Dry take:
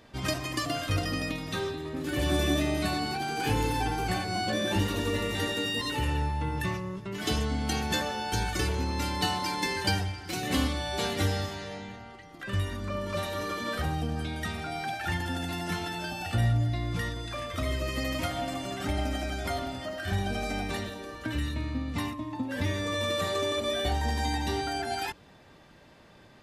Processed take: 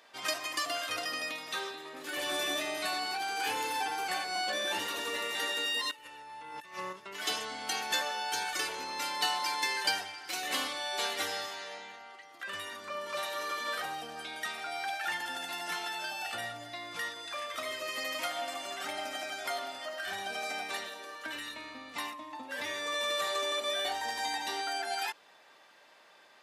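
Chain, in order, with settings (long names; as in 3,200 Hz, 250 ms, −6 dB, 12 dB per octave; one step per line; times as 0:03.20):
high-pass filter 710 Hz 12 dB per octave
0:05.91–0:06.93: compressor whose output falls as the input rises −43 dBFS, ratio −0.5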